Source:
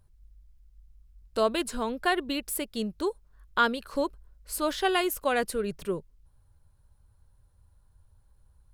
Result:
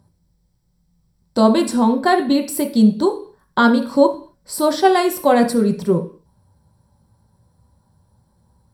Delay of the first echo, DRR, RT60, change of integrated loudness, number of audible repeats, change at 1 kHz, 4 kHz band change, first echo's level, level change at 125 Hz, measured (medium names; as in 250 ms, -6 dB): no echo, 2.5 dB, 0.45 s, +12.5 dB, no echo, +11.5 dB, +6.0 dB, no echo, +18.5 dB